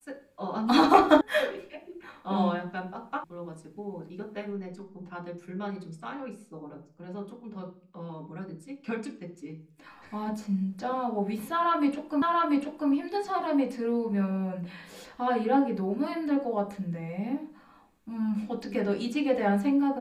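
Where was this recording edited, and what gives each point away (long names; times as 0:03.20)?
0:01.21: cut off before it has died away
0:03.24: cut off before it has died away
0:12.22: the same again, the last 0.69 s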